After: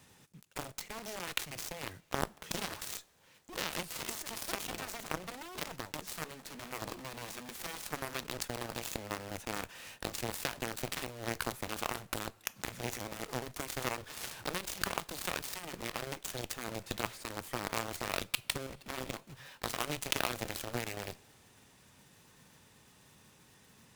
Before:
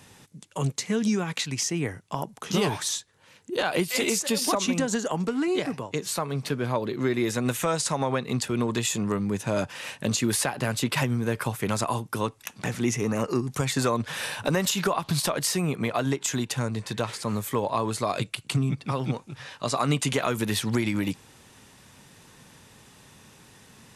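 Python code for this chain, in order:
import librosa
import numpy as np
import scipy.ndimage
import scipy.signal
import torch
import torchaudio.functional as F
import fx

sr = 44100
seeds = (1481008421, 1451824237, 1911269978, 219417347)

p1 = fx.block_float(x, sr, bits=3)
p2 = fx.over_compress(p1, sr, threshold_db=-30.0, ratio=-0.5)
p3 = p1 + F.gain(torch.from_numpy(p2), -0.5).numpy()
p4 = fx.cheby1_highpass(p3, sr, hz=160.0, order=6, at=(6.05, 8.13), fade=0.02)
p5 = fx.cheby_harmonics(p4, sr, harmonics=(5, 6, 7), levels_db=(-25, -27, -13), full_scale_db=-3.5)
p6 = fx.rev_double_slope(p5, sr, seeds[0], early_s=0.29, late_s=4.0, knee_db=-20, drr_db=17.5)
y = F.gain(torch.from_numpy(p6), -7.0).numpy()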